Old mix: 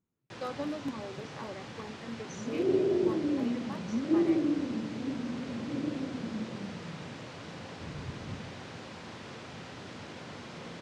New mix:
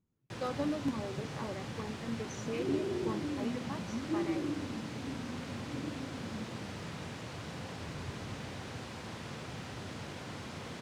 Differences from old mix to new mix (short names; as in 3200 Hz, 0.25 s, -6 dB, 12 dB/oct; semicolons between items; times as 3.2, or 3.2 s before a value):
first sound: remove LPF 6800 Hz 12 dB/oct; second sound -10.0 dB; master: add low shelf 160 Hz +9.5 dB